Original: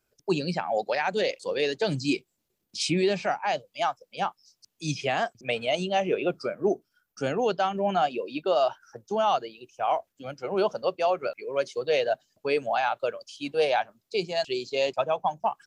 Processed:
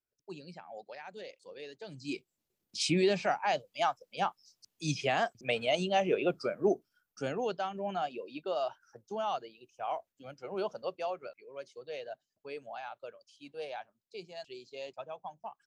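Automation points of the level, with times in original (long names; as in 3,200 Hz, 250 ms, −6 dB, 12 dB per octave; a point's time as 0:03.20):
0:01.93 −19.5 dB
0:02.16 −9.5 dB
0:02.87 −3 dB
0:06.71 −3 dB
0:07.71 −10 dB
0:10.99 −10 dB
0:11.45 −17 dB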